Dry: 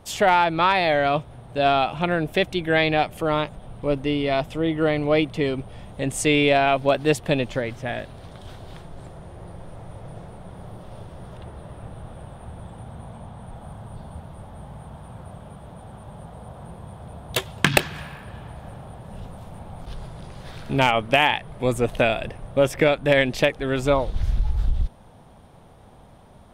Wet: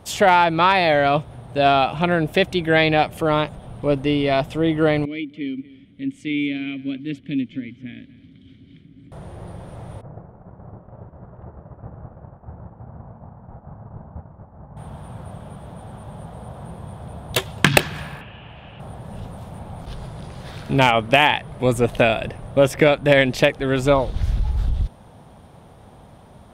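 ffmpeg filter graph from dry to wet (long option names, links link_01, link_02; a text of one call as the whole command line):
ffmpeg -i in.wav -filter_complex "[0:a]asettb=1/sr,asplit=3[link_01][link_02][link_03];[link_01]atrim=end=5.054[link_04];[link_02]atrim=start=5.05:end=9.12,asetpts=PTS-STARTPTS,afade=type=in:duration=0.004:curve=qsin,afade=type=out:start_time=4.066:duration=0.004:curve=qsin,asubboost=boost=6:cutoff=200,asplit=3[link_05][link_06][link_07];[link_05]bandpass=frequency=270:width_type=q:width=8,volume=0dB[link_08];[link_06]bandpass=frequency=2290:width_type=q:width=8,volume=-6dB[link_09];[link_07]bandpass=frequency=3010:width_type=q:width=8,volume=-9dB[link_10];[link_08][link_09][link_10]amix=inputs=3:normalize=0,aecho=1:1:237:0.112,atrim=end_sample=179487[link_11];[link_03]atrim=start=9.116[link_12];[link_04][link_11]acrossfade=duration=0.004:curve1=hsin:curve2=qsin[link_13];[link_13][link_12]acrossfade=duration=0.004:curve1=qsin:curve2=hsin,asettb=1/sr,asplit=3[link_14][link_15][link_16];[link_14]atrim=end=10.014[link_17];[link_15]atrim=start=10.01:end=14.77,asetpts=PTS-STARTPTS,afade=type=in:duration=0.004:curve=qsin,afade=type=out:start_time=4.756:duration=0.004:curve=qsin,agate=range=-33dB:threshold=-34dB:ratio=3:release=100:detection=peak,lowpass=frequency=1500:width=0.5412,lowpass=frequency=1500:width=1.3066[link_18];[link_16]atrim=start=14.766[link_19];[link_17][link_18]acrossfade=duration=0.004:curve1=hsin:curve2=qsin[link_20];[link_20][link_19]acrossfade=duration=0.004:curve1=qsin:curve2=hsin,asettb=1/sr,asplit=3[link_21][link_22][link_23];[link_21]atrim=end=18.214[link_24];[link_22]atrim=start=18.21:end=18.8,asetpts=PTS-STARTPTS,afade=type=in:duration=0.004:curve=qsin,afade=type=out:start_time=0.586:duration=0.004:curve=qsin,lowpass=frequency=2800:width_type=q:width=7.3,acrossover=split=170|1700[link_25][link_26][link_27];[link_25]acompressor=threshold=-47dB:ratio=4[link_28];[link_26]acompressor=threshold=-47dB:ratio=4[link_29];[link_27]acompressor=threshold=-50dB:ratio=4[link_30];[link_28][link_29][link_30]amix=inputs=3:normalize=0[link_31];[link_23]atrim=start=18.796[link_32];[link_24][link_31]acrossfade=duration=0.004:curve1=hsin:curve2=qsin[link_33];[link_33][link_32]acrossfade=duration=0.004:curve1=qsin:curve2=hsin,highpass=frequency=97:poles=1,lowshelf=frequency=150:gain=6,volume=3dB" out.wav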